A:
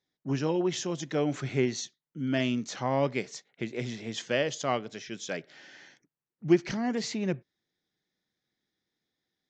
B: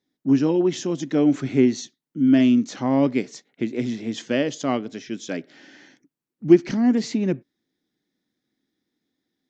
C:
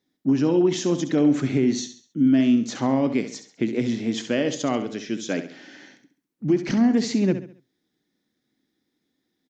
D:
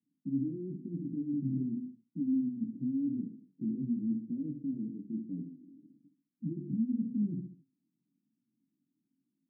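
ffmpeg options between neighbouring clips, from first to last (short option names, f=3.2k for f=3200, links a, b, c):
-af "equalizer=f=270:w=1.7:g=13.5,volume=1.5dB"
-af "alimiter=limit=-14.5dB:level=0:latency=1:release=90,aecho=1:1:68|136|204|272:0.299|0.113|0.0431|0.0164,volume=2.5dB"
-af "asoftclip=type=tanh:threshold=-25dB,flanger=delay=17:depth=5.9:speed=0.94,asuperpass=centerf=190:order=8:qfactor=1.1"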